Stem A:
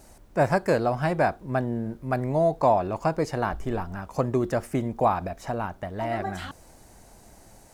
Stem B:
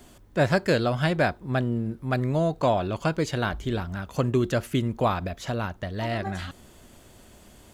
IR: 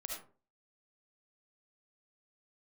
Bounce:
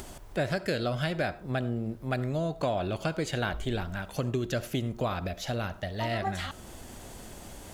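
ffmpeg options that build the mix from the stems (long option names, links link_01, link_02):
-filter_complex "[0:a]acompressor=threshold=-31dB:ratio=6,volume=-0.5dB[link_01];[1:a]acompressor=threshold=-24dB:ratio=5,volume=-1,volume=0dB,asplit=2[link_02][link_03];[link_03]volume=-14dB[link_04];[2:a]atrim=start_sample=2205[link_05];[link_04][link_05]afir=irnorm=-1:irlink=0[link_06];[link_01][link_02][link_06]amix=inputs=3:normalize=0,acompressor=mode=upward:threshold=-38dB:ratio=2.5"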